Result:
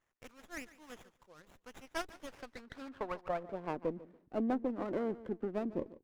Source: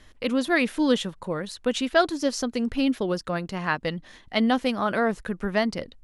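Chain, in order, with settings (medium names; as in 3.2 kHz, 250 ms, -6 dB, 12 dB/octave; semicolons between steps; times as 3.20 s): median filter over 15 samples; band-pass sweep 7.4 kHz -> 340 Hz, 1.73–3.81 s; on a send: feedback delay 145 ms, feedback 24%, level -16.5 dB; on the sum: harmonic-percussive split harmonic -8 dB; treble shelf 7.1 kHz -8.5 dB; sliding maximum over 9 samples; trim +2.5 dB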